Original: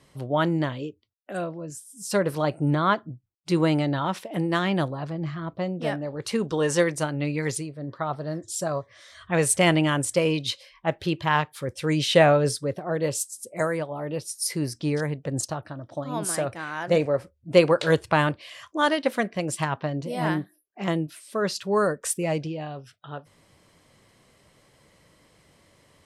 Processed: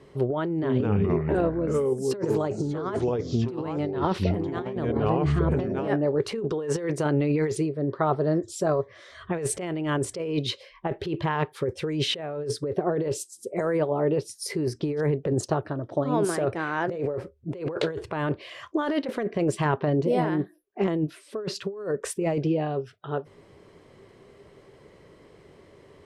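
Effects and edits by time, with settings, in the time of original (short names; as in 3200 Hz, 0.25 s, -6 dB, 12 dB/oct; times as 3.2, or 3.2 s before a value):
0.46–5.88 echoes that change speed 0.167 s, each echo -4 st, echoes 3
whole clip: LPF 1900 Hz 6 dB/oct; bell 400 Hz +14 dB 0.38 oct; negative-ratio compressor -26 dBFS, ratio -1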